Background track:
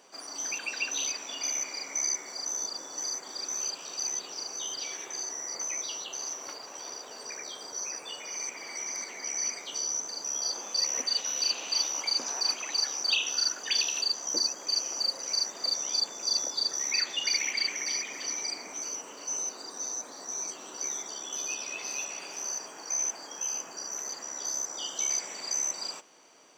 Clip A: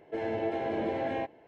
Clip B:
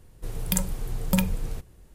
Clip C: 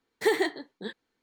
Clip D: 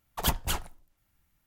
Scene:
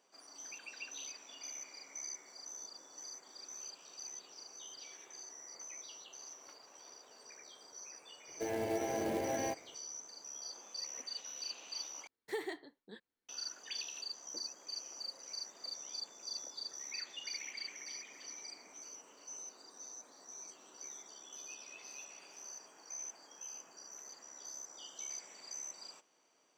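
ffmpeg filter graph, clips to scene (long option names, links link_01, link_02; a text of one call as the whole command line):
ffmpeg -i bed.wav -i cue0.wav -i cue1.wav -i cue2.wav -filter_complex "[0:a]volume=-15dB[link_01];[1:a]acrusher=bits=4:mode=log:mix=0:aa=0.000001[link_02];[link_01]asplit=2[link_03][link_04];[link_03]atrim=end=12.074[link_05];[3:a]atrim=end=1.22,asetpts=PTS-STARTPTS,volume=-15.5dB[link_06];[link_04]atrim=start=13.286[link_07];[link_02]atrim=end=1.47,asetpts=PTS-STARTPTS,volume=-4.5dB,afade=type=in:duration=0.004:curve=hsin,afade=type=out:start_time=1.466:duration=0.004:curve=hsin,adelay=8280[link_08];[link_05][link_06]acrossfade=duration=0.004:curve1=hsin:curve2=hsin[link_09];[link_09][link_07]acrossfade=duration=0.004:curve1=hsin:curve2=hsin[link_10];[link_10][link_08]amix=inputs=2:normalize=0" out.wav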